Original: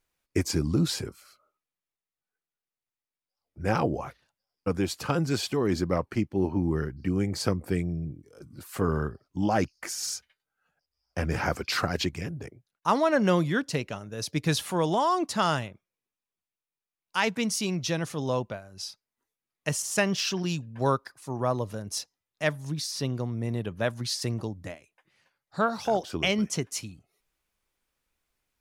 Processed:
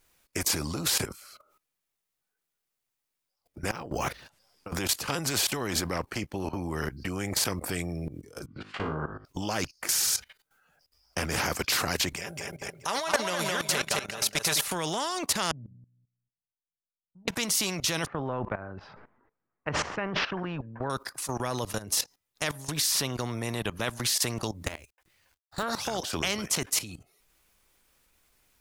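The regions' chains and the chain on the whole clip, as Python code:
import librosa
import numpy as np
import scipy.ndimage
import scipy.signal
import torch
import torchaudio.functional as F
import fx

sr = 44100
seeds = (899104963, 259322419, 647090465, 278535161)

y = fx.chain(x, sr, fx.over_compress(threshold_db=-32.0, ratio=-0.5),
    fx.resample_linear(factor=2), at=(3.71, 4.79))
y = fx.chain(y, sr, fx.env_lowpass_down(base_hz=850.0, full_db=-22.0),
    fx.ladder_lowpass(hz=3600.0, resonance_pct=30),
    fx.room_flutter(wall_m=3.3, rt60_s=0.31), at=(8.46, 9.25))
y = fx.chain(y, sr, fx.low_shelf_res(hz=410.0, db=-11.0, q=1.5),
    fx.comb(ms=5.1, depth=0.46),
    fx.echo_feedback(ms=213, feedback_pct=25, wet_db=-5.5), at=(12.16, 14.68))
y = fx.chain(y, sr, fx.ladder_lowpass(hz=210.0, resonance_pct=35),
    fx.comb_fb(f0_hz=61.0, decay_s=0.73, harmonics='all', damping=0.0, mix_pct=60), at=(15.51, 17.28))
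y = fx.chain(y, sr, fx.lowpass(hz=1600.0, slope=24),
    fx.sustainer(db_per_s=72.0), at=(18.06, 20.9))
y = fx.chain(y, sr, fx.law_mismatch(coded='A'),
    fx.low_shelf_res(hz=100.0, db=12.5, q=1.5), at=(24.66, 25.63))
y = fx.high_shelf(y, sr, hz=6400.0, db=5.0)
y = fx.level_steps(y, sr, step_db=17)
y = fx.spectral_comp(y, sr, ratio=2.0)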